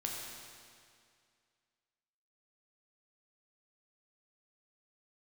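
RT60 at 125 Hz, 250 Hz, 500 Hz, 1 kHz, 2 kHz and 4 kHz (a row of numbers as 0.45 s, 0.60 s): 2.2 s, 2.2 s, 2.2 s, 2.2 s, 2.2 s, 2.1 s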